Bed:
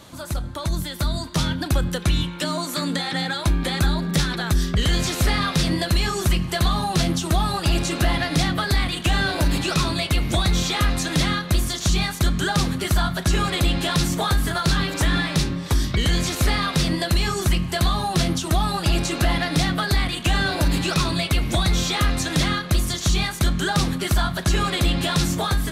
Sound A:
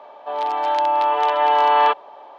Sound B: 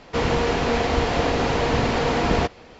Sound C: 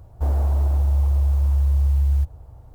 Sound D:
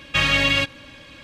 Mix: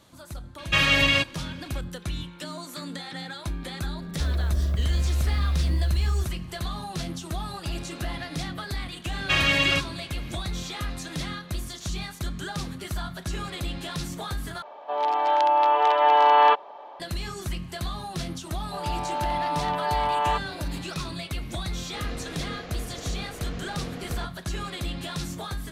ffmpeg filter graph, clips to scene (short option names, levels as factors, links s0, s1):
-filter_complex "[4:a]asplit=2[s0][s1];[1:a]asplit=2[s2][s3];[0:a]volume=0.266[s4];[3:a]asuperstop=centerf=840:order=4:qfactor=2.8[s5];[2:a]equalizer=f=920:w=5.5:g=-12[s6];[s4]asplit=2[s7][s8];[s7]atrim=end=14.624[s9];[s2]atrim=end=2.38,asetpts=PTS-STARTPTS,volume=0.841[s10];[s8]atrim=start=16.996[s11];[s0]atrim=end=1.23,asetpts=PTS-STARTPTS,volume=0.841,afade=t=in:d=0.004:c=hsin,afade=t=out:st=1.226:d=0.004:c=hsin,adelay=580[s12];[s5]atrim=end=2.74,asetpts=PTS-STARTPTS,volume=0.531,afade=t=in:d=0.004:c=hsin,afade=t=out:st=2.736:d=0.004:c=hsin,adelay=3990[s13];[s1]atrim=end=1.23,asetpts=PTS-STARTPTS,volume=0.708,afade=t=in:d=0.004:c=hsin,afade=t=out:st=1.226:d=0.004:c=hsin,adelay=9150[s14];[s3]atrim=end=2.38,asetpts=PTS-STARTPTS,volume=0.335,afade=t=in:d=0.004:c=hsin,afade=t=out:st=2.376:d=0.004:c=hsin,adelay=18450[s15];[s6]atrim=end=2.79,asetpts=PTS-STARTPTS,volume=0.126,afade=t=in:d=0.004:c=hsin,afade=t=out:st=2.786:d=0.004:c=hsin,adelay=21790[s16];[s9][s10]acrossfade=d=0.004:c1=hsin:c2=hsin[s17];[s17][s11]acrossfade=d=0.004:c1=hsin:c2=hsin[s18];[s18][s12][s13][s14][s15][s16]amix=inputs=6:normalize=0"